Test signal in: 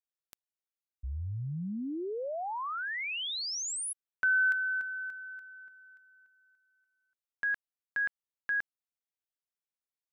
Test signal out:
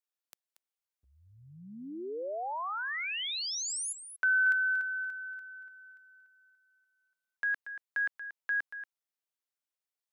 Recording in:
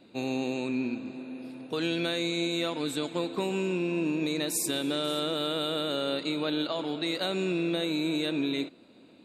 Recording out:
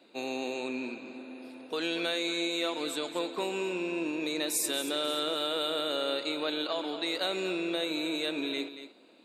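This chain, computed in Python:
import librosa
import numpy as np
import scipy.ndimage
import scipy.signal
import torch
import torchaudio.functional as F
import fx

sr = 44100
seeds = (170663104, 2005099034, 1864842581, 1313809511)

p1 = scipy.signal.sosfilt(scipy.signal.butter(2, 380.0, 'highpass', fs=sr, output='sos'), x)
y = p1 + fx.echo_single(p1, sr, ms=233, db=-11.5, dry=0)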